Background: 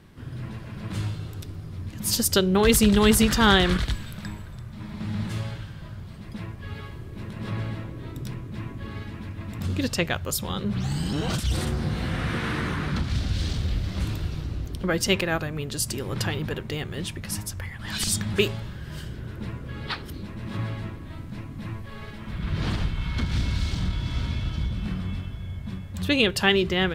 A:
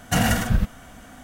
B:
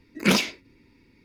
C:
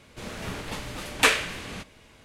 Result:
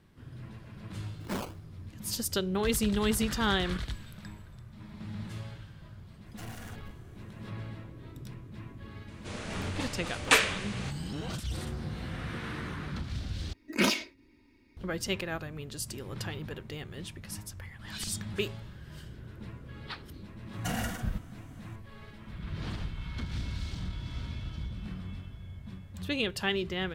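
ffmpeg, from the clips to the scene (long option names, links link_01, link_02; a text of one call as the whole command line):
ffmpeg -i bed.wav -i cue0.wav -i cue1.wav -i cue2.wav -filter_complex "[2:a]asplit=2[link_01][link_02];[1:a]asplit=2[link_03][link_04];[0:a]volume=-10dB[link_05];[link_01]acrusher=samples=19:mix=1:aa=0.000001:lfo=1:lforange=11.4:lforate=3[link_06];[link_03]aeval=exprs='(tanh(25.1*val(0)+0.7)-tanh(0.7))/25.1':channel_layout=same[link_07];[3:a]aresample=22050,aresample=44100[link_08];[link_02]aecho=1:1:3.2:0.48[link_09];[link_05]asplit=2[link_10][link_11];[link_10]atrim=end=13.534[link_12];[link_09]atrim=end=1.24,asetpts=PTS-STARTPTS,volume=-6dB[link_13];[link_11]atrim=start=14.766[link_14];[link_06]atrim=end=1.24,asetpts=PTS-STARTPTS,volume=-15dB,afade=type=in:duration=0.004:curve=hsin,afade=type=out:start_time=1.236:duration=0.004:curve=hsin,adelay=1040[link_15];[link_07]atrim=end=1.23,asetpts=PTS-STARTPTS,volume=-15.5dB,afade=type=in:duration=0.004:curve=hsin,afade=type=out:start_time=1.226:duration=0.004:curve=hsin,adelay=276066S[link_16];[link_08]atrim=end=2.24,asetpts=PTS-STARTPTS,volume=-2.5dB,afade=type=in:duration=0.004:curve=hsin,afade=type=out:start_time=2.236:duration=0.004:curve=hsin,adelay=9080[link_17];[link_04]atrim=end=1.23,asetpts=PTS-STARTPTS,volume=-13dB,afade=type=in:duration=0.004:curve=hsin,afade=type=out:start_time=1.226:duration=0.004:curve=hsin,adelay=20530[link_18];[link_12][link_13]acrossfade=duration=0.004:curve1=hsin:curve2=hsin[link_19];[link_19][link_14]acrossfade=duration=0.004:curve1=hsin:curve2=hsin[link_20];[link_20][link_15][link_16][link_17][link_18]amix=inputs=5:normalize=0" out.wav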